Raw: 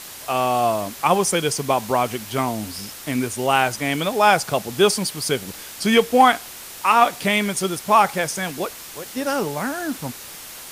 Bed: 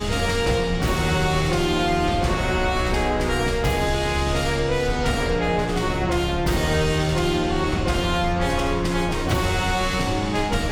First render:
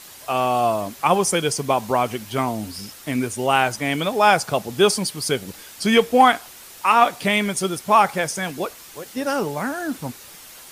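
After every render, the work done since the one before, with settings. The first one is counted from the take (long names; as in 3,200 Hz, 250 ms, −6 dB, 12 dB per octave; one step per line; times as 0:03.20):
broadband denoise 6 dB, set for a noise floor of −38 dBFS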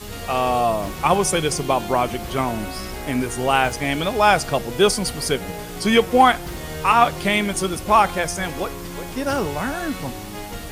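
mix in bed −10.5 dB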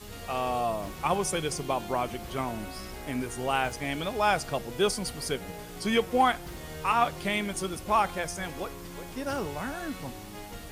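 level −9.5 dB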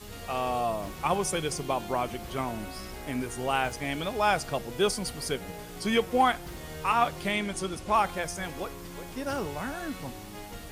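0:07.32–0:07.94: low-pass filter 10,000 Hz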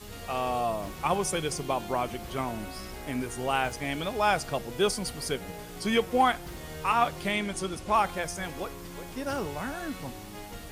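no processing that can be heard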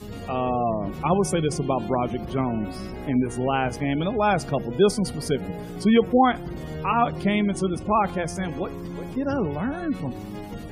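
gate on every frequency bin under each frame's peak −25 dB strong
parametric band 190 Hz +11.5 dB 3 octaves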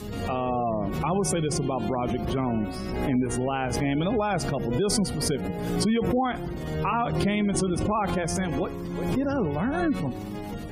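brickwall limiter −17 dBFS, peak gain reduction 10 dB
background raised ahead of every attack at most 33 dB per second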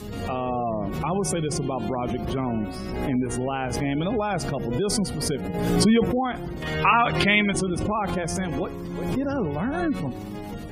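0:05.54–0:06.04: clip gain +5.5 dB
0:06.62–0:07.53: parametric band 2,300 Hz +14 dB 2.3 octaves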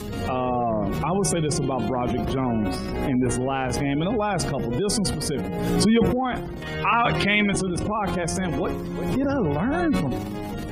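speech leveller within 4 dB 2 s
transient designer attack −3 dB, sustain +8 dB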